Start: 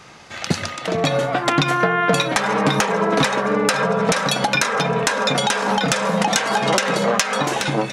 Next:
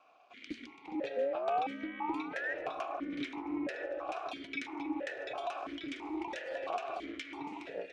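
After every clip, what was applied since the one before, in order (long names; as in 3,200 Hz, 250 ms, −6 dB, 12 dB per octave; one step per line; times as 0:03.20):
sound drawn into the spectrogram rise, 0:01.16–0:02.54, 370–1,800 Hz −18 dBFS
ring modulation 140 Hz
formant filter that steps through the vowels 3 Hz
level −6.5 dB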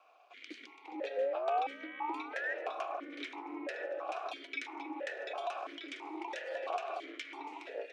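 high-pass filter 370 Hz 24 dB per octave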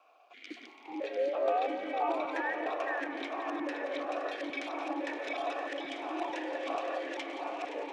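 delay that plays each chunk backwards 450 ms, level −1.5 dB
parametric band 160 Hz +8 dB 2 octaves
echo machine with several playback heads 173 ms, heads first and third, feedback 65%, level −12 dB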